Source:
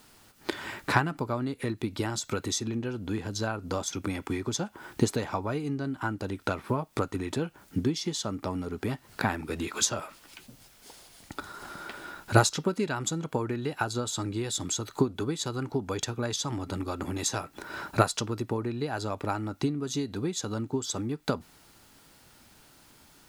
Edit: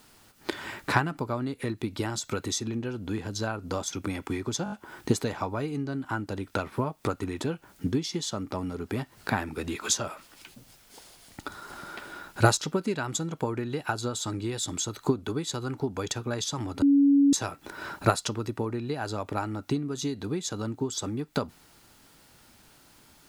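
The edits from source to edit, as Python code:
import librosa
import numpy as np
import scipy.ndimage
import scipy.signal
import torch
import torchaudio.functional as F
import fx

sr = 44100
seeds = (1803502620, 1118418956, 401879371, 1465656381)

y = fx.edit(x, sr, fx.stutter(start_s=4.64, slice_s=0.02, count=5),
    fx.bleep(start_s=16.74, length_s=0.51, hz=281.0, db=-16.0), tone=tone)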